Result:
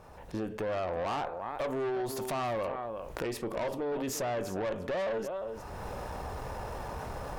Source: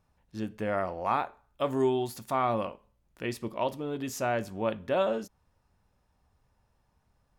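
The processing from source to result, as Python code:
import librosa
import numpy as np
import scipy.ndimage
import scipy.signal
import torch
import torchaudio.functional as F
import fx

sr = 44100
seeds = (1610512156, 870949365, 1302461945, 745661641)

y = fx.recorder_agc(x, sr, target_db=-22.5, rise_db_per_s=42.0, max_gain_db=30)
y = fx.curve_eq(y, sr, hz=(220.0, 470.0, 3700.0), db=(0, 11, 0))
y = y + 10.0 ** (-16.0 / 20.0) * np.pad(y, (int(350 * sr / 1000.0), 0))[:len(y)]
y = fx.tube_stage(y, sr, drive_db=23.0, bias=0.45)
y = fx.env_flatten(y, sr, amount_pct=50)
y = y * librosa.db_to_amplitude(-7.0)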